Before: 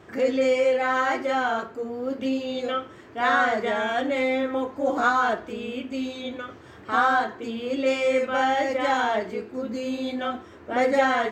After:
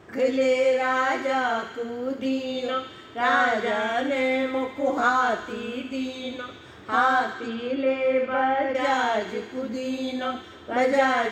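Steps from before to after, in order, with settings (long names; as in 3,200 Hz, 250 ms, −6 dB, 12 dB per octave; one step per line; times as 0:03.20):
delay with a high-pass on its return 72 ms, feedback 77%, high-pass 2,100 Hz, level −8 dB
0:07.33–0:08.75: treble cut that deepens with the level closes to 2,000 Hz, closed at −21.5 dBFS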